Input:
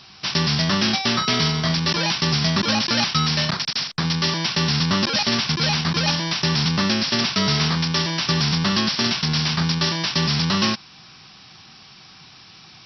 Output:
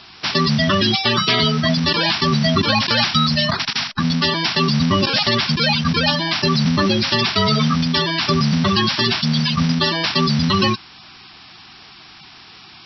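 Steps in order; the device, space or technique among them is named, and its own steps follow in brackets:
clip after many re-uploads (low-pass filter 5,000 Hz 24 dB per octave; spectral magnitudes quantised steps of 30 dB)
level +5 dB

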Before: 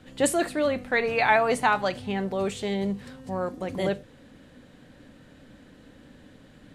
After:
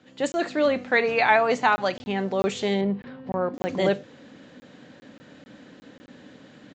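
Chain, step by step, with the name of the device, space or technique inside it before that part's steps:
call with lost packets (high-pass filter 170 Hz 12 dB per octave; downsampling to 16,000 Hz; automatic gain control gain up to 8.5 dB; dropped packets of 20 ms random)
0:02.81–0:03.54: high-frequency loss of the air 380 metres
level −3.5 dB

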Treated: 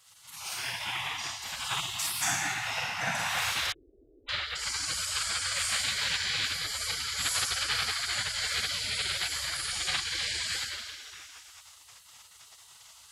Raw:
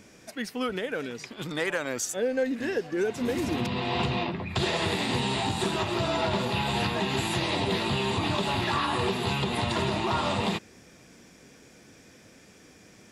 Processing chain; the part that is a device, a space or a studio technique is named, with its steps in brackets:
whispering ghost (random phases in short frames; high-pass filter 220 Hz 12 dB per octave; convolution reverb RT60 1.9 s, pre-delay 28 ms, DRR −8.5 dB)
0:03.72–0:04.29: inverse Chebyshev low-pass filter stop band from 890 Hz, stop band 80 dB
gate on every frequency bin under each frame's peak −20 dB weak
level +2.5 dB

